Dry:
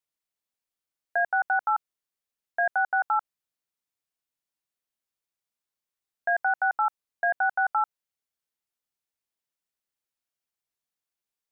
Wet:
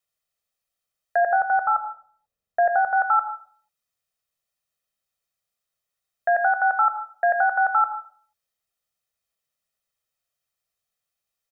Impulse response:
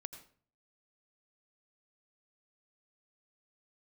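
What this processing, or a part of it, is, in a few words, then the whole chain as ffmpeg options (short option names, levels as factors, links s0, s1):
microphone above a desk: -filter_complex "[0:a]aecho=1:1:1.6:0.58[s0];[1:a]atrim=start_sample=2205[s1];[s0][s1]afir=irnorm=-1:irlink=0,asplit=3[s2][s3][s4];[s2]afade=t=out:st=1.2:d=0.02[s5];[s3]tiltshelf=f=860:g=6.5,afade=t=in:st=1.2:d=0.02,afade=t=out:st=2.96:d=0.02[s6];[s4]afade=t=in:st=2.96:d=0.02[s7];[s5][s6][s7]amix=inputs=3:normalize=0,volume=2.51"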